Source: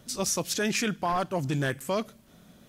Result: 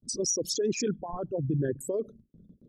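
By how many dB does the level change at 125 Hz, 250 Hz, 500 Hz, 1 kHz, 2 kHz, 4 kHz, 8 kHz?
−0.5, −1.5, +1.0, −12.0, −14.0, −3.0, 0.0 decibels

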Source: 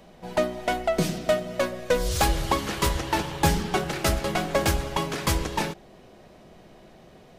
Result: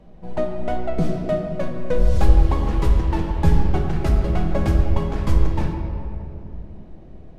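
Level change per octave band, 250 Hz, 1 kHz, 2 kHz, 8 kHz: +4.5, −3.0, −7.0, −15.0 decibels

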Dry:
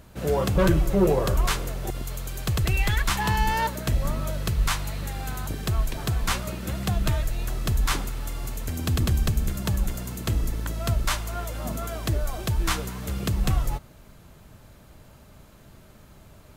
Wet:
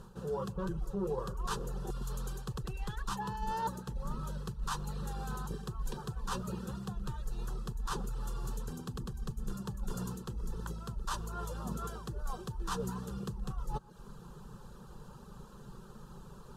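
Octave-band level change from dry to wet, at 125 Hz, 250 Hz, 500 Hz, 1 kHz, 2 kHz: −14.0, −11.0, −12.5, −9.5, −17.0 decibels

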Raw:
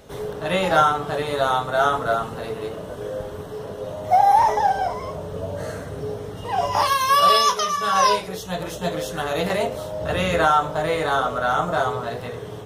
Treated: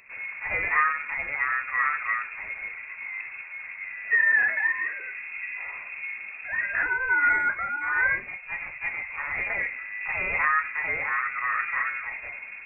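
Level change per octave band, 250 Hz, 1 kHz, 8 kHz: −20.5 dB, −12.5 dB, below −40 dB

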